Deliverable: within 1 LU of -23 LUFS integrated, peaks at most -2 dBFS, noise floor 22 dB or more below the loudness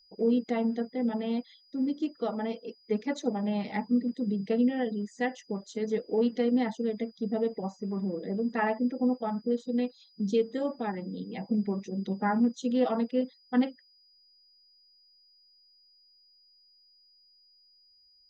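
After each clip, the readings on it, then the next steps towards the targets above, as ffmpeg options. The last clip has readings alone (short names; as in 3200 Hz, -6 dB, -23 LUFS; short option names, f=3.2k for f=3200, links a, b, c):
steady tone 4900 Hz; tone level -60 dBFS; loudness -30.5 LUFS; peak -15.0 dBFS; loudness target -23.0 LUFS
-> -af "bandreject=f=4.9k:w=30"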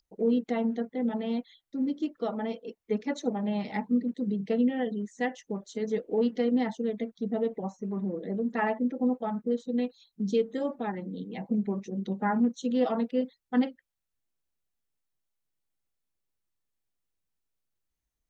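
steady tone none; loudness -30.5 LUFS; peak -15.0 dBFS; loudness target -23.0 LUFS
-> -af "volume=7.5dB"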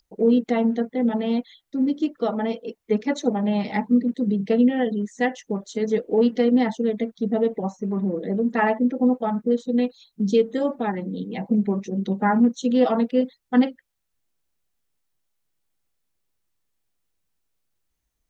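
loudness -23.0 LUFS; peak -7.5 dBFS; noise floor -77 dBFS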